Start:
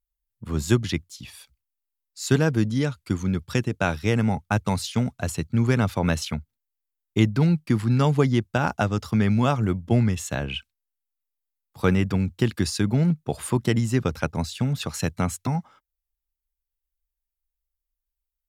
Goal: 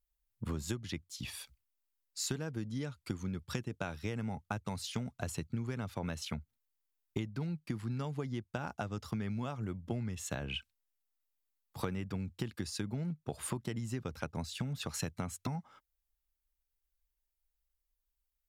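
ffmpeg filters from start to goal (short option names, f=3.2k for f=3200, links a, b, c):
-af "acompressor=threshold=-34dB:ratio=12"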